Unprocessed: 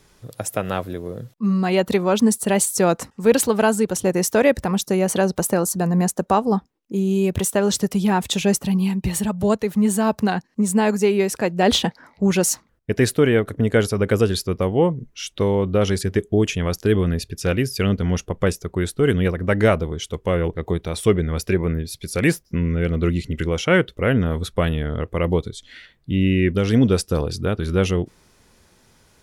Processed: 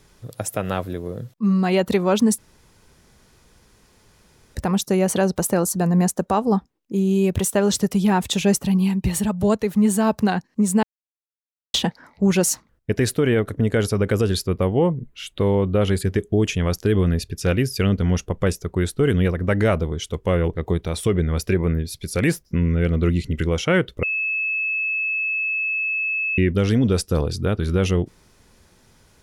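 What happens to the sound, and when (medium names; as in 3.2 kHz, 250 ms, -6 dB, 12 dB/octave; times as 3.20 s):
2.38–4.55 s: room tone
10.83–11.74 s: mute
14.46–16.05 s: peaking EQ 5.7 kHz -13.5 dB 0.37 oct
24.03–26.38 s: bleep 2.6 kHz -20 dBFS
whole clip: bass shelf 170 Hz +3.5 dB; loudness maximiser +7.5 dB; trim -8 dB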